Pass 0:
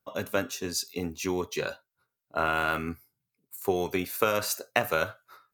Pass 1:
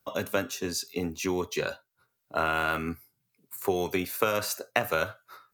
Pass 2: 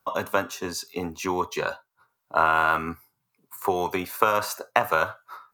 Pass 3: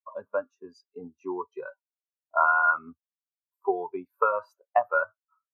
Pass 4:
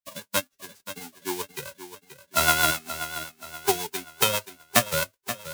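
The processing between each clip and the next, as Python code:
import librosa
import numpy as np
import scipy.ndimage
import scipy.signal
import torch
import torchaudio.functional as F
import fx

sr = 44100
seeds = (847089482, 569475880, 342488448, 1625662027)

y1 = fx.band_squash(x, sr, depth_pct=40)
y2 = fx.peak_eq(y1, sr, hz=1000.0, db=14.0, octaves=0.99)
y2 = y2 * 10.0 ** (-1.0 / 20.0)
y3 = fx.spectral_expand(y2, sr, expansion=2.5)
y3 = y3 * 10.0 ** (-6.5 / 20.0)
y4 = fx.envelope_flatten(y3, sr, power=0.1)
y4 = fx.rotary(y4, sr, hz=7.5)
y4 = fx.echo_feedback(y4, sr, ms=529, feedback_pct=42, wet_db=-12.0)
y4 = y4 * 10.0 ** (3.5 / 20.0)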